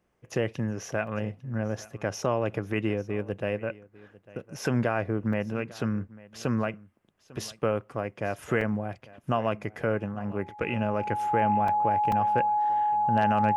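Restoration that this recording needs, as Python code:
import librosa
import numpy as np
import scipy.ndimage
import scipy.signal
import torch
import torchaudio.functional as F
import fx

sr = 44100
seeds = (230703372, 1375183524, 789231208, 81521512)

y = fx.fix_declip(x, sr, threshold_db=-12.5)
y = fx.notch(y, sr, hz=840.0, q=30.0)
y = fx.fix_interpolate(y, sr, at_s=(1.07, 5.33, 8.61, 9.09, 11.68, 12.12), length_ms=3.0)
y = fx.fix_echo_inverse(y, sr, delay_ms=849, level_db=-21.0)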